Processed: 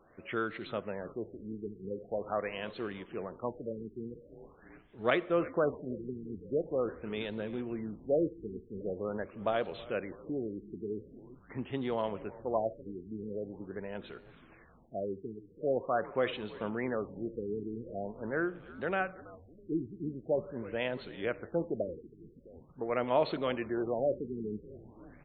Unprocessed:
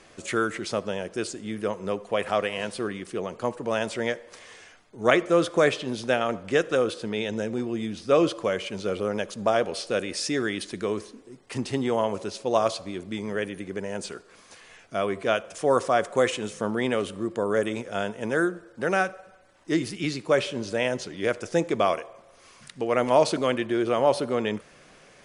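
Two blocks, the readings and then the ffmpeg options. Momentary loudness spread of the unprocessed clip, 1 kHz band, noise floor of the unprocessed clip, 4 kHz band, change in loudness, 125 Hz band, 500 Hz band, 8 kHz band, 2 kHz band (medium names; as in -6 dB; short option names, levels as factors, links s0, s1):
10 LU, -10.5 dB, -54 dBFS, -14.5 dB, -9.5 dB, -8.0 dB, -9.0 dB, under -40 dB, -11.0 dB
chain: -filter_complex "[0:a]asplit=7[s0][s1][s2][s3][s4][s5][s6];[s1]adelay=327,afreqshift=-86,volume=0.119[s7];[s2]adelay=654,afreqshift=-172,volume=0.075[s8];[s3]adelay=981,afreqshift=-258,volume=0.0473[s9];[s4]adelay=1308,afreqshift=-344,volume=0.0299[s10];[s5]adelay=1635,afreqshift=-430,volume=0.0186[s11];[s6]adelay=1962,afreqshift=-516,volume=0.0117[s12];[s0][s7][s8][s9][s10][s11][s12]amix=inputs=7:normalize=0,afftfilt=real='re*lt(b*sr/1024,430*pow(4400/430,0.5+0.5*sin(2*PI*0.44*pts/sr)))':imag='im*lt(b*sr/1024,430*pow(4400/430,0.5+0.5*sin(2*PI*0.44*pts/sr)))':win_size=1024:overlap=0.75,volume=0.376"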